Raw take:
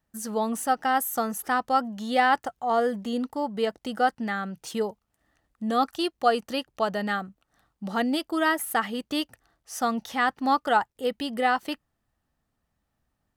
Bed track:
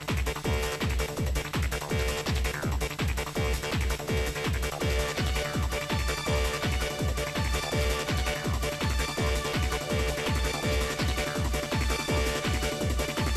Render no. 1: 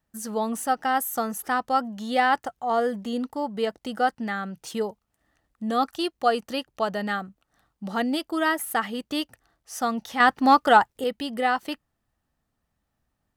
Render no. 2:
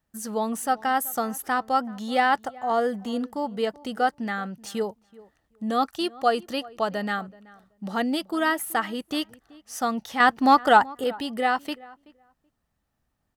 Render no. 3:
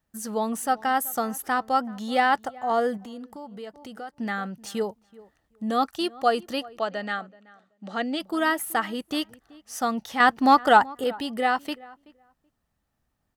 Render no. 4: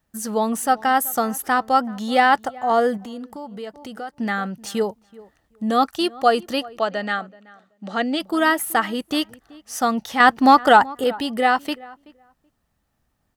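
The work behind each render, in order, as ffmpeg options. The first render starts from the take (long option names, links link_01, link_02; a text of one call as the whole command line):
ffmpeg -i in.wav -filter_complex "[0:a]asettb=1/sr,asplit=3[link_01][link_02][link_03];[link_01]atrim=end=10.204[link_04];[link_02]atrim=start=10.2:end=11.04,asetpts=PTS-STARTPTS,afade=type=in:duration=0.004:curve=qsin,afade=type=out:start_time=0.836:duration=0.004:curve=qsin,acontrast=63[link_05];[link_03]atrim=start=11.036[link_06];[link_04][link_05]acrossfade=duration=0.004:curve1=hsin:curve2=qsin[link_07];[link_07][link_06]acrossfade=duration=0.004:curve1=qsin:curve2=hsin" out.wav
ffmpeg -i in.wav -filter_complex "[0:a]asplit=2[link_01][link_02];[link_02]adelay=379,lowpass=frequency=1700:poles=1,volume=-21dB,asplit=2[link_03][link_04];[link_04]adelay=379,lowpass=frequency=1700:poles=1,volume=0.17[link_05];[link_01][link_03][link_05]amix=inputs=3:normalize=0" out.wav
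ffmpeg -i in.wav -filter_complex "[0:a]asettb=1/sr,asplit=3[link_01][link_02][link_03];[link_01]atrim=end=2.974[link_04];[link_02]atrim=start=2.97:end=4.17,asetpts=PTS-STARTPTS,afade=type=in:duration=0.004:curve=qsin,afade=type=out:start_time=1.196:duration=0.004:curve=qsin,acompressor=threshold=-41dB:ratio=2.5:attack=3.2:release=140:knee=1:detection=peak[link_05];[link_03]atrim=start=4.166[link_06];[link_04][link_05]acrossfade=duration=0.004:curve1=hsin:curve2=qsin[link_07];[link_07][link_06]acrossfade=duration=0.004:curve1=qsin:curve2=hsin,asplit=3[link_08][link_09][link_10];[link_08]afade=type=out:start_time=6.78:duration=0.02[link_11];[link_09]highpass=270,equalizer=frequency=400:width_type=q:width=4:gain=-4,equalizer=frequency=960:width_type=q:width=4:gain=-7,equalizer=frequency=5300:width_type=q:width=4:gain=-7,lowpass=frequency=7200:width=0.5412,lowpass=frequency=7200:width=1.3066,afade=type=in:start_time=6.78:duration=0.02,afade=type=out:start_time=8.19:duration=0.02[link_12];[link_10]afade=type=in:start_time=8.19:duration=0.02[link_13];[link_11][link_12][link_13]amix=inputs=3:normalize=0" out.wav
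ffmpeg -i in.wav -af "volume=5.5dB,alimiter=limit=-3dB:level=0:latency=1" out.wav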